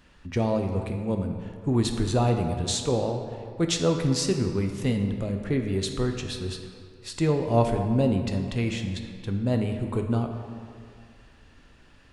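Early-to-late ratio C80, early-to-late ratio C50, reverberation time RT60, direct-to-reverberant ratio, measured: 7.0 dB, 6.0 dB, 2.2 s, 4.0 dB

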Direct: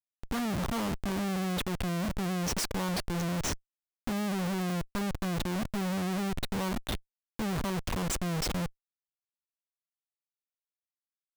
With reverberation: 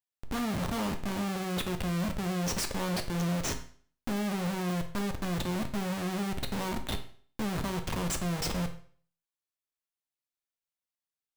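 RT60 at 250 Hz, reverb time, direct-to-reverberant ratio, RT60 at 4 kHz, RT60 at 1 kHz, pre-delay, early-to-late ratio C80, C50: 0.50 s, 0.50 s, 5.5 dB, 0.45 s, 0.45 s, 8 ms, 15.0 dB, 11.0 dB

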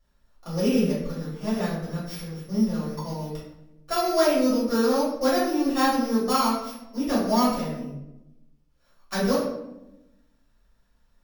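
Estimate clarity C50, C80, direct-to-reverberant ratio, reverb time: 1.5 dB, 5.5 dB, −11.5 dB, 0.90 s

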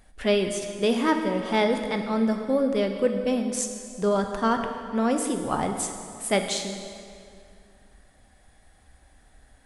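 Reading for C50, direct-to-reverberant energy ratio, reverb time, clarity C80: 6.5 dB, 5.0 dB, 2.4 s, 7.5 dB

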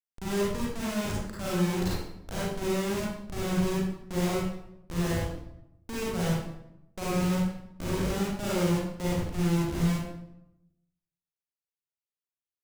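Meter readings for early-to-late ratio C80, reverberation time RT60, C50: 1.5 dB, 0.85 s, −3.0 dB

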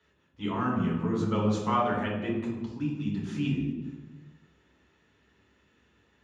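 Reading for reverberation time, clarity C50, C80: 1.2 s, 3.5 dB, 5.5 dB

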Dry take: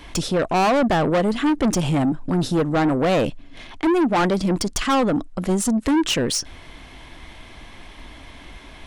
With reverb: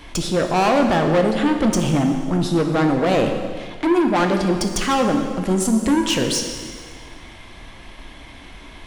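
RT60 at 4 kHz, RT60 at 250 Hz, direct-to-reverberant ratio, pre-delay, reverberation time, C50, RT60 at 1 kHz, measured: 1.8 s, 1.9 s, 3.5 dB, 5 ms, 1.9 s, 5.5 dB, 1.9 s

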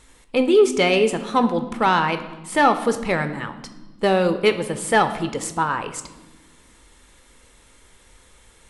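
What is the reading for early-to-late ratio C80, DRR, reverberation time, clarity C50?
14.0 dB, 9.0 dB, 1.3 s, 12.0 dB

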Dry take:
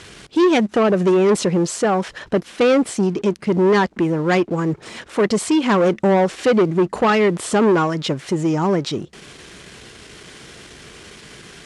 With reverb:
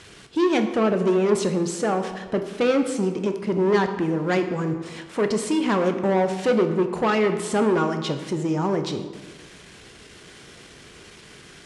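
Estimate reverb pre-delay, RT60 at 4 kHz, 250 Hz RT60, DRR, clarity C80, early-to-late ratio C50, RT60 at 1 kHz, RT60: 14 ms, 0.90 s, 1.4 s, 6.5 dB, 10.5 dB, 9.0 dB, 1.3 s, 1.3 s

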